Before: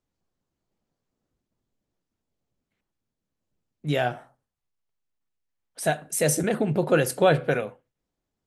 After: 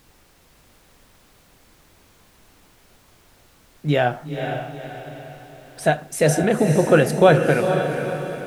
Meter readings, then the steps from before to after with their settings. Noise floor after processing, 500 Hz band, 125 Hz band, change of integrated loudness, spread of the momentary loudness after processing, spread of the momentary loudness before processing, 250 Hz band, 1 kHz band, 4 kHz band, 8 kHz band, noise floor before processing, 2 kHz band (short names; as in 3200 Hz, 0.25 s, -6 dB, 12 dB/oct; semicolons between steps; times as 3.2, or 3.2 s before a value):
-55 dBFS, +7.0 dB, +7.5 dB, +5.0 dB, 19 LU, 10 LU, +7.0 dB, +6.5 dB, +3.5 dB, -1.0 dB, -84 dBFS, +6.0 dB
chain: LPF 3200 Hz 6 dB/oct; added noise pink -61 dBFS; diffused feedback echo 0.484 s, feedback 45%, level -6.5 dB; gain +6 dB